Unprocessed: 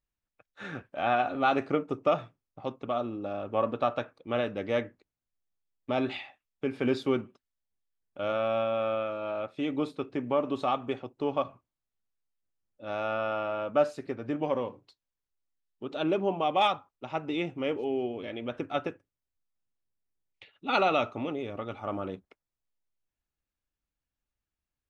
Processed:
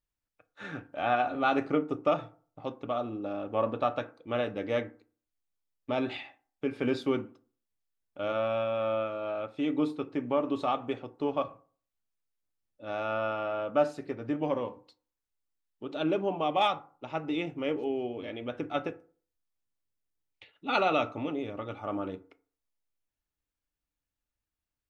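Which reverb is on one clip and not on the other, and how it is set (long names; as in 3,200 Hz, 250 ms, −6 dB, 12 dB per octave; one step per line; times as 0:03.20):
feedback delay network reverb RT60 0.44 s, low-frequency decay 1×, high-frequency decay 0.45×, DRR 11 dB
level −1.5 dB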